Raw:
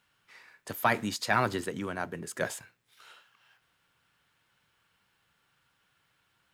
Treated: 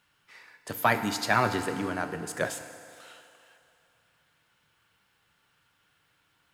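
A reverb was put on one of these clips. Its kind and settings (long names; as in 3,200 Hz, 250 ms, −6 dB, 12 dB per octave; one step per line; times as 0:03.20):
feedback delay network reverb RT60 2.7 s, low-frequency decay 0.7×, high-frequency decay 0.9×, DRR 8 dB
level +2 dB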